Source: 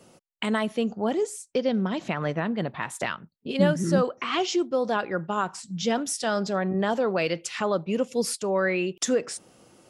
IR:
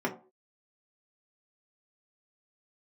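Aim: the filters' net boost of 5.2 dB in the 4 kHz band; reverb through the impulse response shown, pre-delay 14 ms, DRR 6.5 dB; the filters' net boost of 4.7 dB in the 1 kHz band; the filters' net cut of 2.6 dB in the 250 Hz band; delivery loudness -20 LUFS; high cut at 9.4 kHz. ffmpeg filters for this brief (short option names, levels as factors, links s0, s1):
-filter_complex "[0:a]lowpass=9400,equalizer=f=250:t=o:g=-4,equalizer=f=1000:t=o:g=6,equalizer=f=4000:t=o:g=7,asplit=2[s0][s1];[1:a]atrim=start_sample=2205,adelay=14[s2];[s1][s2]afir=irnorm=-1:irlink=0,volume=0.178[s3];[s0][s3]amix=inputs=2:normalize=0,volume=1.58"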